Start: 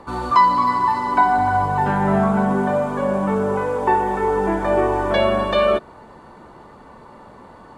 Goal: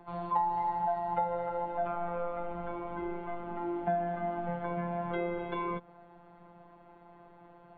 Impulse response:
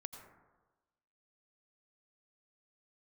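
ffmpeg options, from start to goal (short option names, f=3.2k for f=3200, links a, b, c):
-filter_complex "[0:a]afftfilt=real='hypot(re,im)*cos(PI*b)':imag='0':win_size=1024:overlap=0.75,acrossover=split=780|1600[a][b][c];[a]acompressor=threshold=-25dB:ratio=4[d];[b]acompressor=threshold=-22dB:ratio=4[e];[c]acompressor=threshold=-40dB:ratio=4[f];[d][e][f]amix=inputs=3:normalize=0,highpass=f=200:t=q:w=0.5412,highpass=f=200:t=q:w=1.307,lowpass=f=3.5k:t=q:w=0.5176,lowpass=f=3.5k:t=q:w=0.7071,lowpass=f=3.5k:t=q:w=1.932,afreqshift=-170,volume=-8dB"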